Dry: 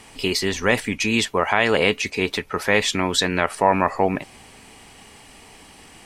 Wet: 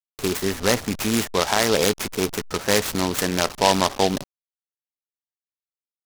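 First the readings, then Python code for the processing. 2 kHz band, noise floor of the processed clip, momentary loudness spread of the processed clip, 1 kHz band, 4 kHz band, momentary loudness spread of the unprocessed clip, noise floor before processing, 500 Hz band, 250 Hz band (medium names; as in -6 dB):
-5.5 dB, under -85 dBFS, 7 LU, -2.0 dB, -0.5 dB, 5 LU, -47 dBFS, -0.5 dB, 0.0 dB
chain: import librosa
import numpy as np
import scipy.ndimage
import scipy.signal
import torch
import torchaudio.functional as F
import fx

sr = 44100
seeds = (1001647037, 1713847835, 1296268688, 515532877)

y = fx.delta_hold(x, sr, step_db=-28.0)
y = fx.lowpass(y, sr, hz=2700.0, slope=6)
y = fx.noise_mod_delay(y, sr, seeds[0], noise_hz=3600.0, depth_ms=0.097)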